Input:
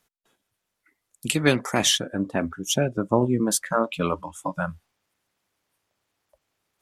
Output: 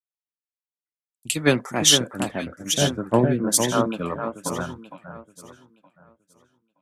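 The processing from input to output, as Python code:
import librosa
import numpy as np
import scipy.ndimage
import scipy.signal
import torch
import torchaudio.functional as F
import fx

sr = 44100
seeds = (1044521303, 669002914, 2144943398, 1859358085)

y = fx.echo_alternate(x, sr, ms=460, hz=1700.0, feedback_pct=66, wet_db=-3.0)
y = fx.band_widen(y, sr, depth_pct=100)
y = F.gain(torch.from_numpy(y), -2.5).numpy()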